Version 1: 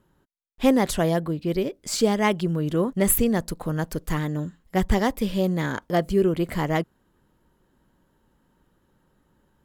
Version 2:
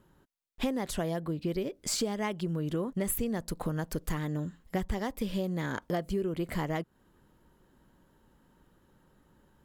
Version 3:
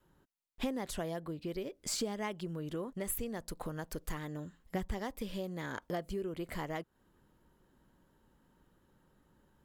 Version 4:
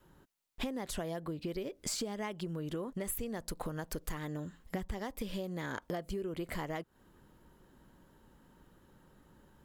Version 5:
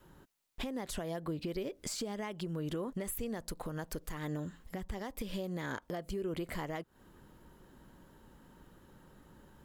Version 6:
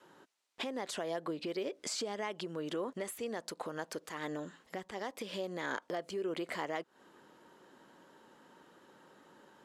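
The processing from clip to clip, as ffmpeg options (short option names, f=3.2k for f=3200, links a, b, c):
-af "acompressor=threshold=-30dB:ratio=6,volume=1dB"
-af "adynamicequalizer=threshold=0.00501:dfrequency=170:dqfactor=0.79:tfrequency=170:tqfactor=0.79:attack=5:release=100:ratio=0.375:range=3:mode=cutabove:tftype=bell,volume=-4.5dB"
-af "acompressor=threshold=-43dB:ratio=3,volume=6.5dB"
-af "alimiter=level_in=8dB:limit=-24dB:level=0:latency=1:release=265,volume=-8dB,volume=3.5dB"
-af "highpass=350,lowpass=7.5k,volume=3.5dB"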